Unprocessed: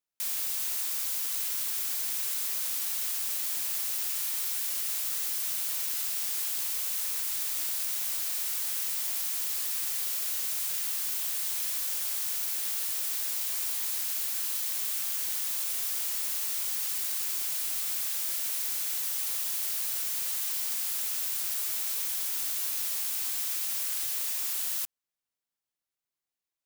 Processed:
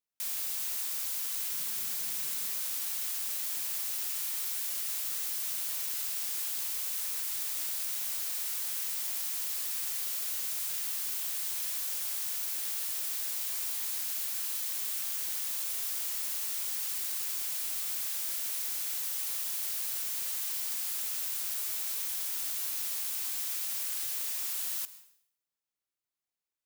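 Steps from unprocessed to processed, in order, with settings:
0:01.51–0:02.53: parametric band 170 Hz +13.5 dB 0.91 octaves
convolution reverb RT60 0.65 s, pre-delay 101 ms, DRR 15.5 dB
level −3 dB

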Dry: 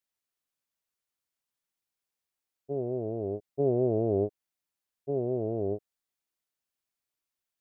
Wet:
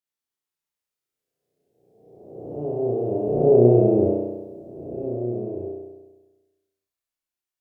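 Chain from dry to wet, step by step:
peak hold with a rise ahead of every peak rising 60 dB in 1.51 s
source passing by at 0:03.45, 16 m/s, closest 10 metres
flutter between parallel walls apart 5.7 metres, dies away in 1.2 s
level +5 dB

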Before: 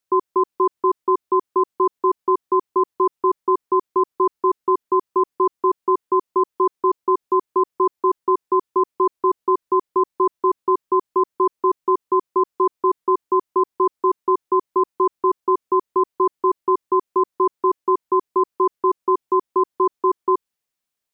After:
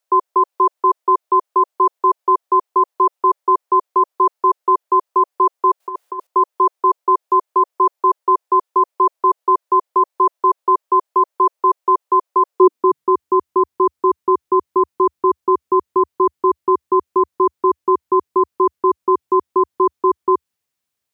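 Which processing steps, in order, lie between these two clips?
high-pass filter sweep 610 Hz → 75 Hz, 0:12.49–0:13.12
0:05.80–0:06.27: compressor whose output falls as the input rises −24 dBFS, ratio −0.5
level +3 dB

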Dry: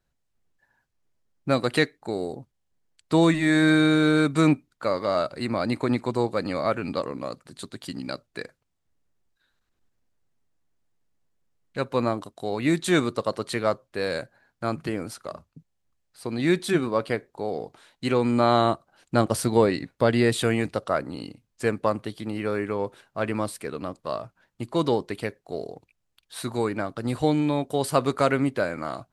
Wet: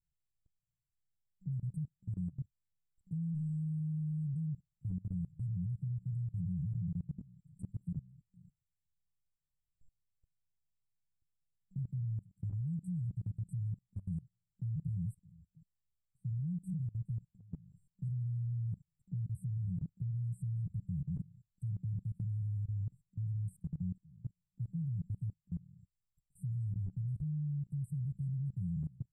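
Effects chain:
brick-wall band-stop 190–7,600 Hz
downward compressor 2.5 to 1, threshold −33 dBFS, peak gain reduction 7.5 dB
steady tone 7,600 Hz −67 dBFS
output level in coarse steps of 22 dB
high-frequency loss of the air 350 metres
level +8.5 dB

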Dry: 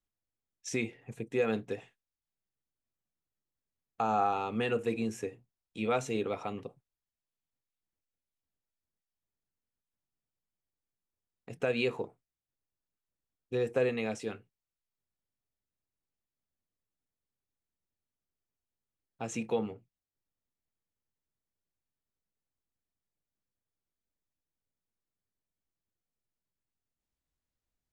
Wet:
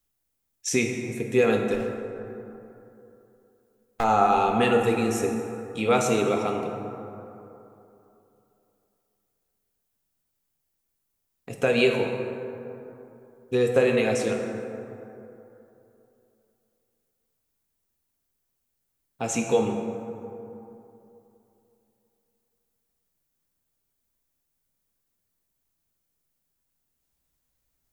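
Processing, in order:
0:01.74–0:04.04: gain on one half-wave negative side −12 dB
high-shelf EQ 8,100 Hz +12 dB
dense smooth reverb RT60 3 s, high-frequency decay 0.4×, DRR 2 dB
level +7.5 dB

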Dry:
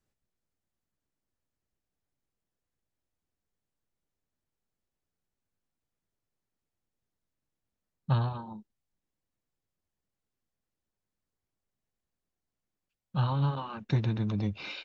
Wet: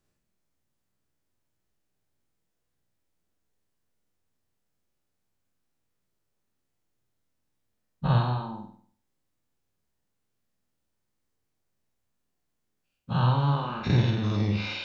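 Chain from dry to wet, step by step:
every bin's largest magnitude spread in time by 120 ms
flutter between parallel walls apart 8.3 metres, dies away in 0.53 s

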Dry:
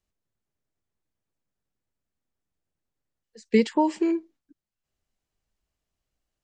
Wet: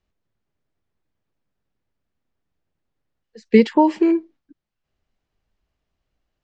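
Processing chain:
high-frequency loss of the air 150 metres
level +7.5 dB

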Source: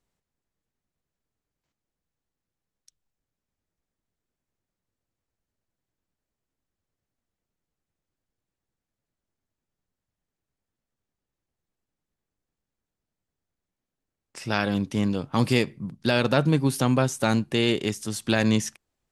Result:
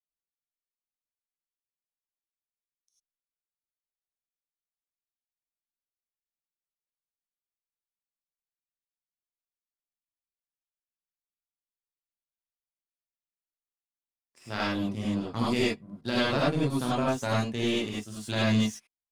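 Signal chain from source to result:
spectral magnitudes quantised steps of 15 dB
power curve on the samples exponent 1.4
reverb whose tail is shaped and stops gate 120 ms rising, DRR −6.5 dB
level −7.5 dB

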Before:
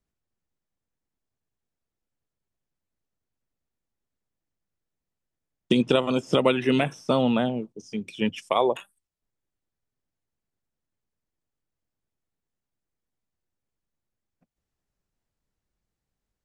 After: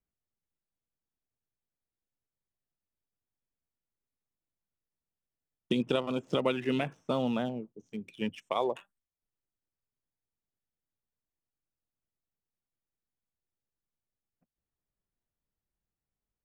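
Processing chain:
adaptive Wiener filter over 9 samples
level −8 dB

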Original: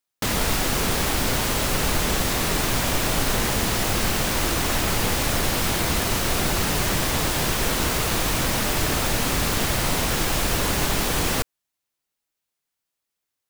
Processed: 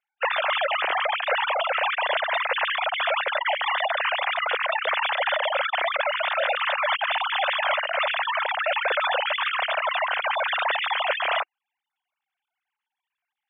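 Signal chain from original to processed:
three sine waves on the formant tracks
0:06.23–0:07.84: Butterworth high-pass 530 Hz 96 dB per octave
gate on every frequency bin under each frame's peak −20 dB strong
level −2.5 dB

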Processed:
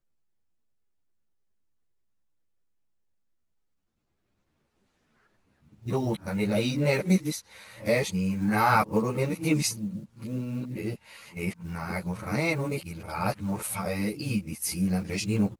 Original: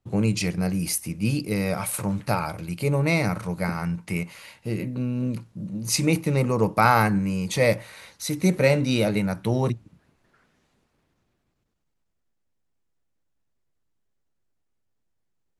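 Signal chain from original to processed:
played backwards from end to start
floating-point word with a short mantissa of 4 bits
string-ensemble chorus
level −1 dB

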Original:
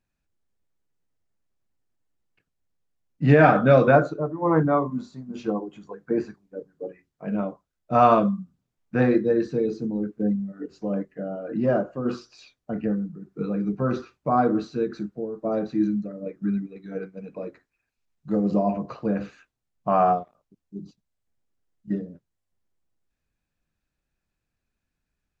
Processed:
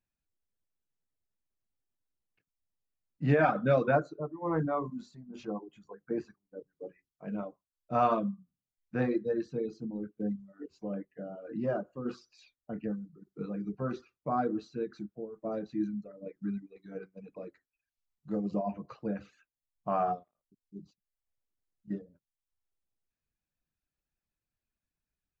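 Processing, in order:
0:04.36–0:05.51: transient designer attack −3 dB, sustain +4 dB
reverb reduction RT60 0.64 s
level −9 dB

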